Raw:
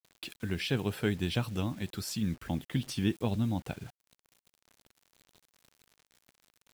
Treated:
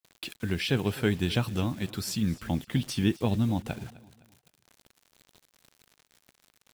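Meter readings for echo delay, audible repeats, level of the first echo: 0.256 s, 2, -19.5 dB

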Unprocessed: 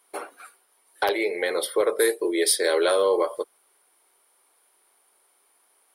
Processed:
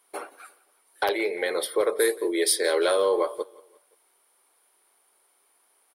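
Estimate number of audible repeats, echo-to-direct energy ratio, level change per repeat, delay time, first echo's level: 2, -21.5 dB, -6.5 dB, 0.174 s, -22.5 dB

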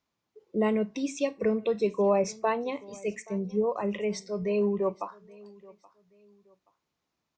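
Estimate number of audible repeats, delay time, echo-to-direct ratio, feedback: 2, 0.826 s, -22.5 dB, 30%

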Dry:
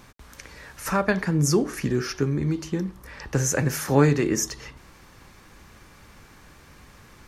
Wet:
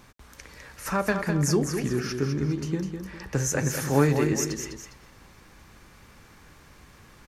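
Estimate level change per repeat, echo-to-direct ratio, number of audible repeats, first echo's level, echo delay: -8.0 dB, -6.5 dB, 2, -7.0 dB, 0.203 s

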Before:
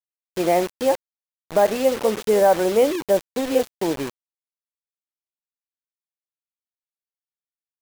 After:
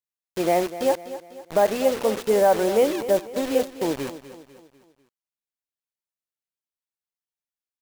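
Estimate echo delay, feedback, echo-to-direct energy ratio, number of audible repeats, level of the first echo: 0.248 s, 46%, -13.0 dB, 4, -14.0 dB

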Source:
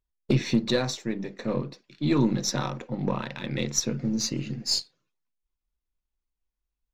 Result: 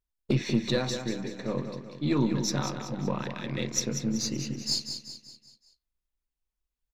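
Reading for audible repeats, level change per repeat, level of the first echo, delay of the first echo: 5, -6.5 dB, -8.0 dB, 0.19 s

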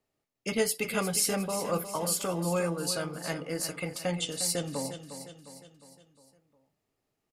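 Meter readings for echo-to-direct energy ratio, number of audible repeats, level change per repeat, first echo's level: -9.0 dB, 5, -6.0 dB, -10.5 dB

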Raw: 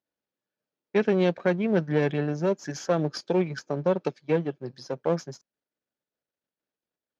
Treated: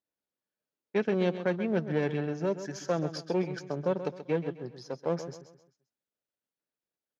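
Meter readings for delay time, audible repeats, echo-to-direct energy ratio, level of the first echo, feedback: 0.131 s, 3, -11.0 dB, -11.5 dB, 38%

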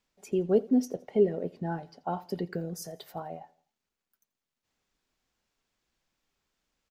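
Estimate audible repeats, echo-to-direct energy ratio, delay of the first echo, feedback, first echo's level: 2, -21.5 dB, 84 ms, 45%, -22.5 dB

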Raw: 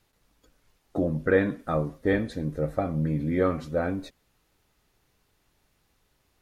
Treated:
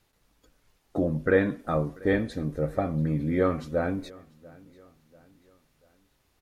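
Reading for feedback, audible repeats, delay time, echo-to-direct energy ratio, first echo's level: 45%, 2, 0.69 s, -22.5 dB, -23.5 dB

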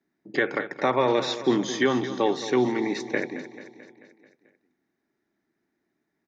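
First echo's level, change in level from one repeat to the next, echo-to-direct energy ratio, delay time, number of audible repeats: -13.0 dB, -4.5 dB, -11.0 dB, 0.219 s, 5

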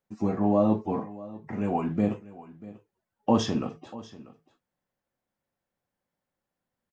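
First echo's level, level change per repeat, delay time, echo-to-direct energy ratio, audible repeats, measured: -18.5 dB, no steady repeat, 0.64 s, -18.5 dB, 1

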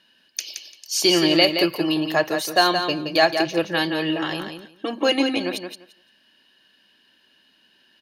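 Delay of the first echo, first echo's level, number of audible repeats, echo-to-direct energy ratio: 0.172 s, -7.0 dB, 2, -7.0 dB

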